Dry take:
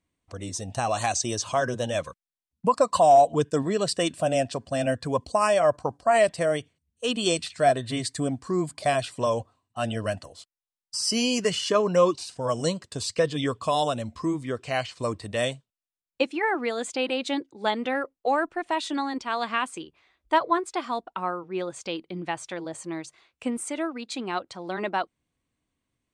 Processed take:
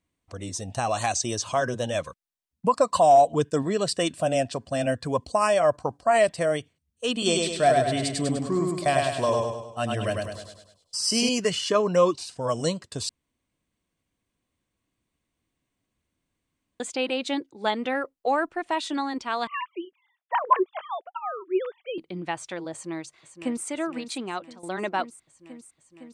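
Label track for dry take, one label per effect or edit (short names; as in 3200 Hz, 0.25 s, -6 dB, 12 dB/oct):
7.120000	11.290000	feedback echo 0.101 s, feedback 49%, level -3 dB
13.090000	16.800000	room tone
19.470000	21.980000	sine-wave speech
22.720000	23.660000	echo throw 0.51 s, feedback 80%, level -10 dB
24.190000	24.630000	fade out, to -14.5 dB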